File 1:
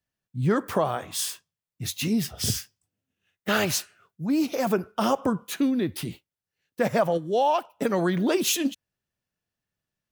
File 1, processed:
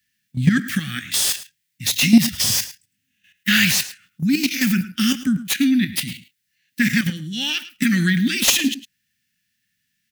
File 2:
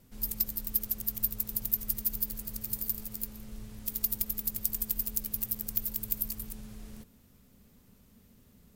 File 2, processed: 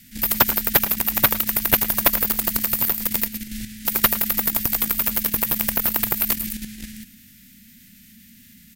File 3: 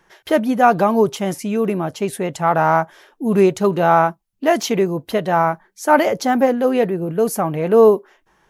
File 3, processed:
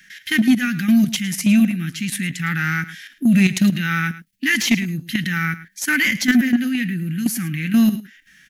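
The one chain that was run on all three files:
elliptic band-stop filter 240–1,800 Hz, stop band 40 dB
high-shelf EQ 3,300 Hz +4.5 dB
harmonic and percussive parts rebalanced percussive −7 dB
high-shelf EQ 11,000 Hz +9.5 dB
output level in coarse steps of 11 dB
mid-hump overdrive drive 21 dB, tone 2,300 Hz, clips at −6 dBFS
single-tap delay 108 ms −16 dB
loudness normalisation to −19 LKFS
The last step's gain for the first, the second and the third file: +11.0, +14.5, +5.5 decibels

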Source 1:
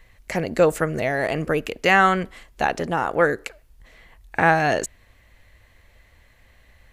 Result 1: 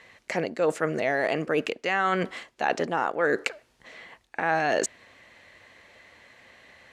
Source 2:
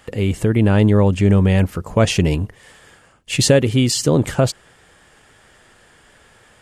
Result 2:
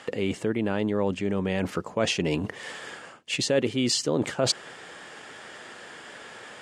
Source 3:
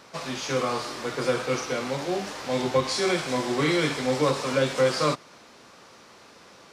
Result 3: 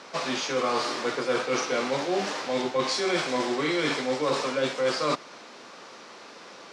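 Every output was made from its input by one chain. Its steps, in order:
reversed playback
downward compressor 10 to 1, threshold −27 dBFS
reversed playback
band-pass filter 230–6,800 Hz
loudness normalisation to −27 LKFS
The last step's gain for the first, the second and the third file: +6.0, +8.0, +5.5 decibels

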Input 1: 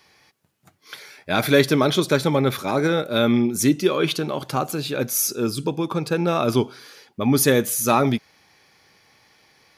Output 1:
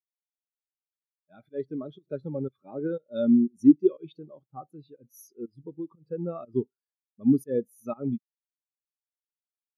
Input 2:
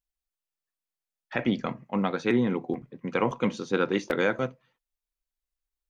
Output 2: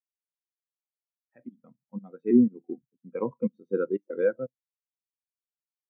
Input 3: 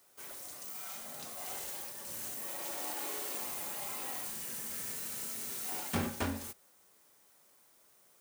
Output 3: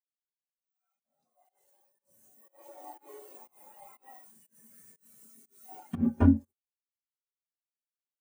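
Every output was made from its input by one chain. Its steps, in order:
fade in at the beginning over 2.62 s
fake sidechain pumping 121 BPM, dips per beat 1, −20 dB, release 155 ms
every bin expanded away from the loudest bin 2.5 to 1
loudness normalisation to −27 LKFS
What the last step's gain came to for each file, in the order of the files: −2.0, +2.0, +11.5 decibels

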